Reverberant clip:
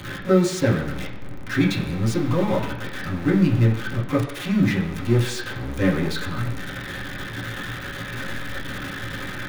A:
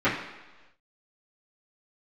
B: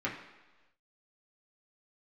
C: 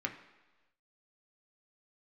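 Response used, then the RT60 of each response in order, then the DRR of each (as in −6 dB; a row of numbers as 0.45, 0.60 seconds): B; 1.2, 1.2, 1.2 seconds; −15.0, −5.5, 2.5 decibels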